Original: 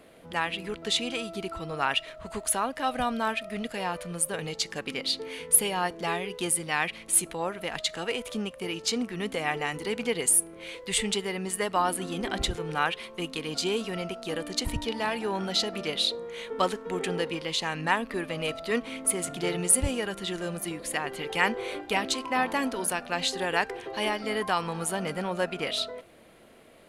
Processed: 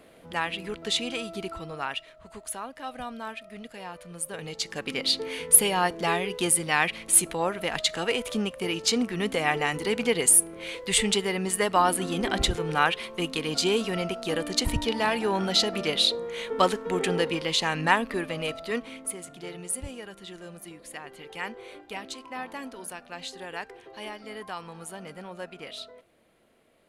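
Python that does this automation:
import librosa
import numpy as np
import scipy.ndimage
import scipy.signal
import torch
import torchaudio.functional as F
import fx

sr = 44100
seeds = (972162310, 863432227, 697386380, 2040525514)

y = fx.gain(x, sr, db=fx.line((1.49, 0.0), (2.1, -8.5), (3.98, -8.5), (5.08, 4.0), (17.89, 4.0), (18.85, -3.0), (19.25, -10.0)))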